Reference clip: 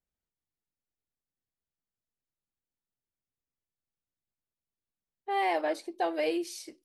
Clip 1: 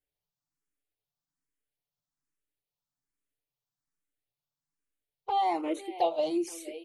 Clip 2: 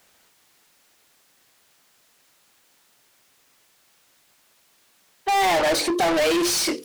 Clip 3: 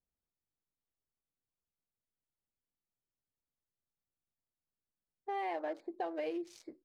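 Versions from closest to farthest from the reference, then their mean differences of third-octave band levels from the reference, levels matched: 3, 1, 2; 4.0, 5.5, 13.0 decibels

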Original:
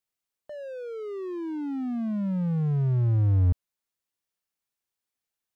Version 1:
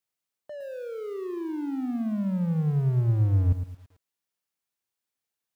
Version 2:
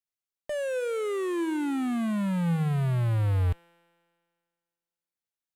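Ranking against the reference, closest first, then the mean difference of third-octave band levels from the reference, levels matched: 1, 2; 2.5, 10.0 decibels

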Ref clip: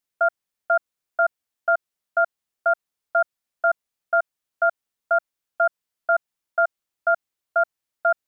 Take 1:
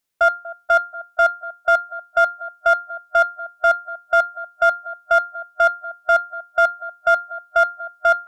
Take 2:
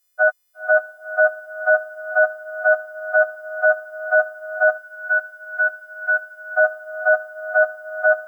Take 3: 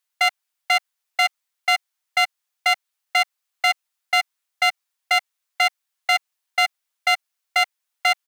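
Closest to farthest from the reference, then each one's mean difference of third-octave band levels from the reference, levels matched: 2, 1, 3; 3.0, 5.5, 14.5 decibels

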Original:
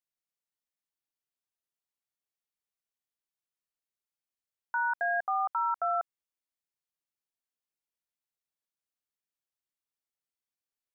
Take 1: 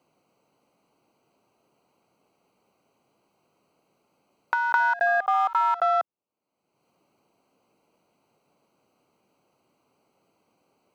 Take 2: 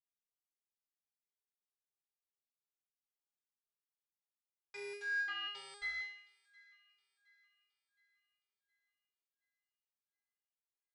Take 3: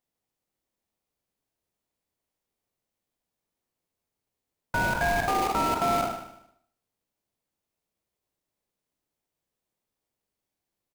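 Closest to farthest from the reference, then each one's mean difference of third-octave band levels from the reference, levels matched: 1, 2, 3; 7.0, 15.0, 27.5 decibels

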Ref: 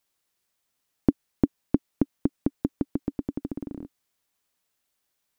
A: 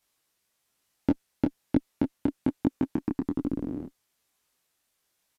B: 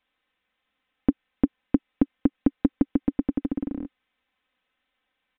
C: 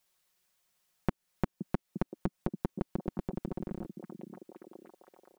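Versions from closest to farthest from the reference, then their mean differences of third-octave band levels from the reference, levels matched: B, A, C; 2.5, 5.0, 7.5 decibels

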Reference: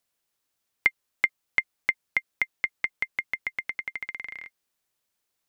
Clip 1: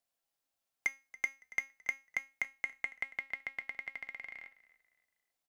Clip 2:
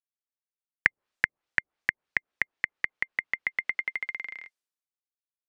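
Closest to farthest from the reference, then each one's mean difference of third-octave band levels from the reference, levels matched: 2, 1; 2.0, 3.0 decibels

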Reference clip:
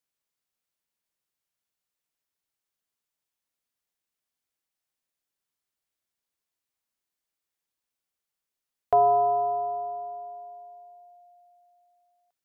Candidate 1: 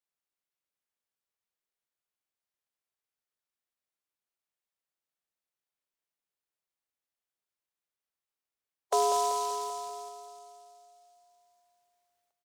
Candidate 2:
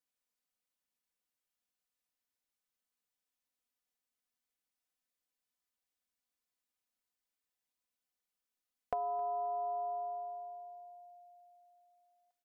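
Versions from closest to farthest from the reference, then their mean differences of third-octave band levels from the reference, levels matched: 2, 1; 2.0, 9.5 decibels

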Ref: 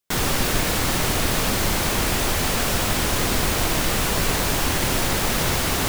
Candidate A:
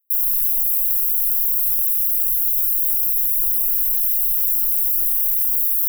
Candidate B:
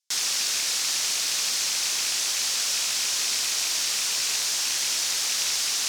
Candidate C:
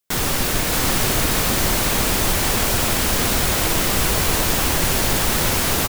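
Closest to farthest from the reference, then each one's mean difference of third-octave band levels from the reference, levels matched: C, B, A; 1.5, 13.0, 39.5 decibels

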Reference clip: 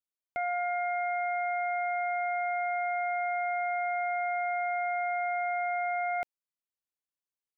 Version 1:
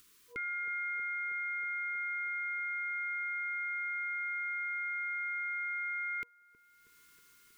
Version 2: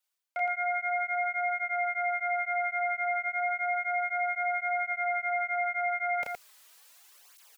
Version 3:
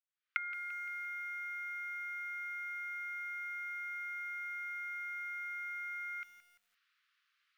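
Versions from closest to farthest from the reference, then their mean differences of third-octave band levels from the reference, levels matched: 2, 1, 3; 1.0, 5.0, 9.5 decibels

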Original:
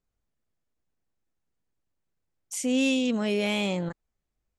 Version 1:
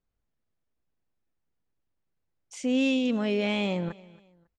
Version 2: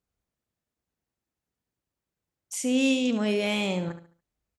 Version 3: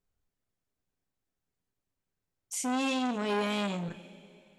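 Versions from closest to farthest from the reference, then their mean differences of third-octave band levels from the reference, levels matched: 2, 1, 3; 1.0, 2.5, 4.5 decibels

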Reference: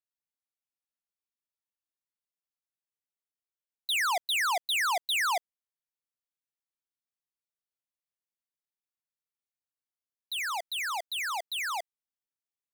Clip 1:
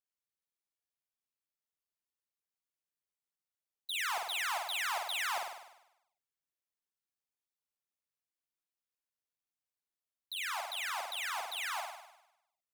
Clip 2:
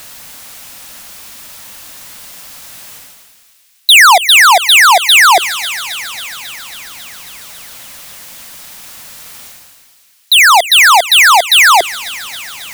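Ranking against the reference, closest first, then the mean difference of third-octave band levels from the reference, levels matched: 2, 1; 5.0, 11.0 decibels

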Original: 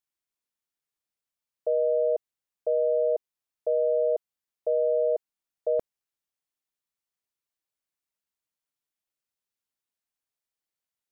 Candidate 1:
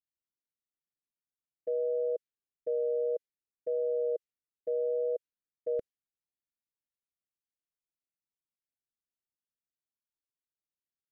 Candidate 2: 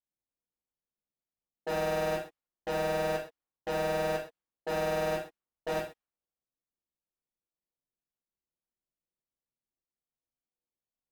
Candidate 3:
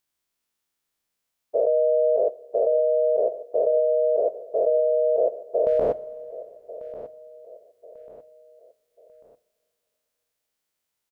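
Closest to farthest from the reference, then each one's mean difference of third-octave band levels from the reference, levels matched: 1, 3, 2; 1.0, 2.0, 25.0 decibels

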